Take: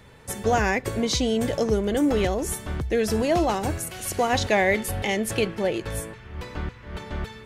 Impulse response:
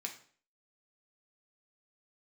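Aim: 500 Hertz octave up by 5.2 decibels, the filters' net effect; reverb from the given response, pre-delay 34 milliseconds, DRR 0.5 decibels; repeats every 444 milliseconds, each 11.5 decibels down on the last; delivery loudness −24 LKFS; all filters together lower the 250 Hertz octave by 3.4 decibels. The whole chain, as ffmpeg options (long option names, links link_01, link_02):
-filter_complex "[0:a]equalizer=frequency=250:width_type=o:gain=-7,equalizer=frequency=500:width_type=o:gain=8,aecho=1:1:444|888|1332:0.266|0.0718|0.0194,asplit=2[link_01][link_02];[1:a]atrim=start_sample=2205,adelay=34[link_03];[link_02][link_03]afir=irnorm=-1:irlink=0,volume=0.5dB[link_04];[link_01][link_04]amix=inputs=2:normalize=0,volume=-4.5dB"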